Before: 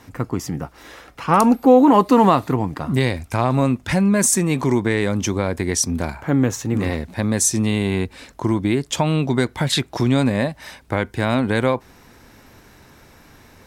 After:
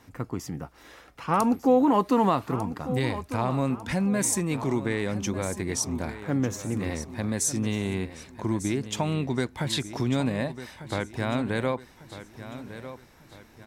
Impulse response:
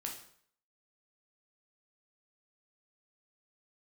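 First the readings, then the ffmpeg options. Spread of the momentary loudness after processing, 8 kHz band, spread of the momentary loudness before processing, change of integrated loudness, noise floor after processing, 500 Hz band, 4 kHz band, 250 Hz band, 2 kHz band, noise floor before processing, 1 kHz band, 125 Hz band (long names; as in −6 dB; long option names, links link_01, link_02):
17 LU, −8.0 dB, 12 LU, −8.5 dB, −54 dBFS, −8.5 dB, −8.0 dB, −8.0 dB, −8.5 dB, −49 dBFS, −8.0 dB, −8.5 dB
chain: -af "aecho=1:1:1198|2396|3594|4792:0.224|0.0918|0.0376|0.0154,volume=-8.5dB"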